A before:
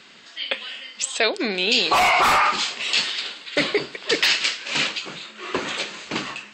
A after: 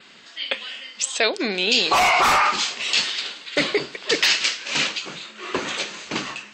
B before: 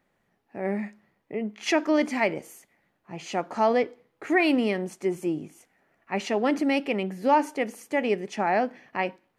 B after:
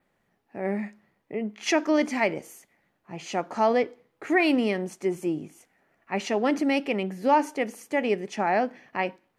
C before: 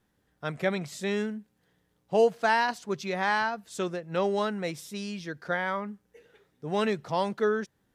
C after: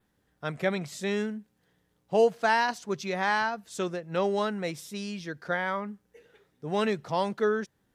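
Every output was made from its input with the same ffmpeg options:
-af "adynamicequalizer=threshold=0.00501:dfrequency=6000:dqfactor=3.6:tfrequency=6000:tqfactor=3.6:attack=5:release=100:ratio=0.375:range=2.5:mode=boostabove:tftype=bell"

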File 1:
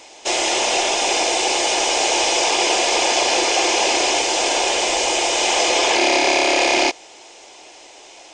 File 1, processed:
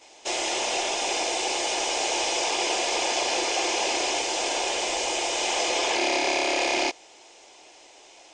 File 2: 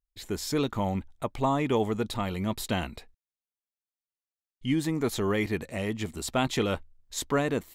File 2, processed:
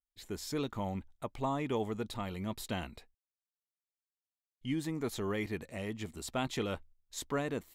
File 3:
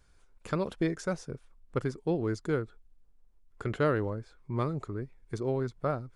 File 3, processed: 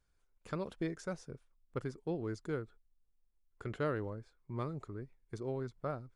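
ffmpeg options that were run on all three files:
-af "agate=range=0.501:threshold=0.00447:ratio=16:detection=peak,volume=0.398"

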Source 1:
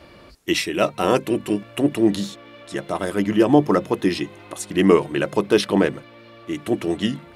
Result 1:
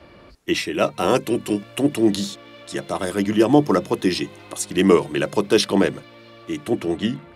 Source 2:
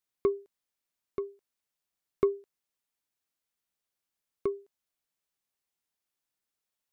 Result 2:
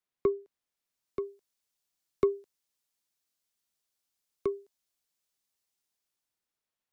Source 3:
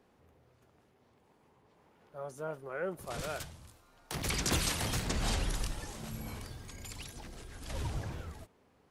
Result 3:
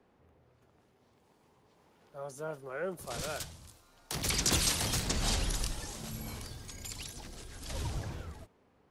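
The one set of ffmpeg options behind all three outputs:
-filter_complex "[0:a]highshelf=f=4800:g=-9,acrossover=split=210|740|4000[s0][s1][s2][s3];[s3]dynaudnorm=f=140:g=13:m=3.98[s4];[s0][s1][s2][s4]amix=inputs=4:normalize=0"

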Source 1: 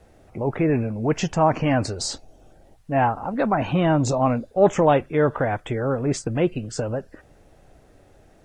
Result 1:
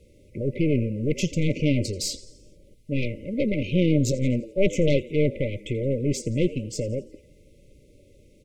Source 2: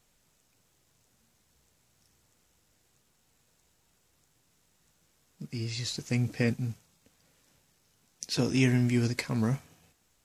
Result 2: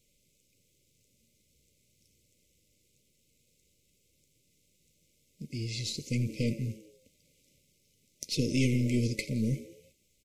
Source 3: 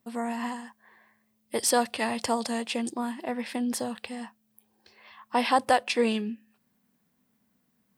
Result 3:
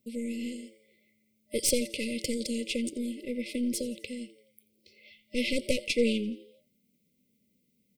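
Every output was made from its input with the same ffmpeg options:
-filter_complex "[0:a]asplit=6[s0][s1][s2][s3][s4][s5];[s1]adelay=85,afreqshift=100,volume=0.119[s6];[s2]adelay=170,afreqshift=200,volume=0.0638[s7];[s3]adelay=255,afreqshift=300,volume=0.0347[s8];[s4]adelay=340,afreqshift=400,volume=0.0186[s9];[s5]adelay=425,afreqshift=500,volume=0.0101[s10];[s0][s6][s7][s8][s9][s10]amix=inputs=6:normalize=0,aeval=exprs='0.596*(cos(1*acos(clip(val(0)/0.596,-1,1)))-cos(1*PI/2))+0.237*(cos(4*acos(clip(val(0)/0.596,-1,1)))-cos(4*PI/2))+0.0841*(cos(5*acos(clip(val(0)/0.596,-1,1)))-cos(5*PI/2))':c=same,afftfilt=real='re*(1-between(b*sr/4096,610,2000))':imag='im*(1-between(b*sr/4096,610,2000))':win_size=4096:overlap=0.75,volume=0.531"

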